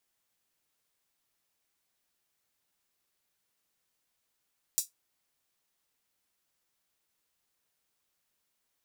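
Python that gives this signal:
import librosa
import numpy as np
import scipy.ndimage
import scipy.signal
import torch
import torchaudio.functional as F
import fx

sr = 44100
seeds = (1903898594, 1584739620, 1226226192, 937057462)

y = fx.drum_hat(sr, length_s=0.24, from_hz=6200.0, decay_s=0.15)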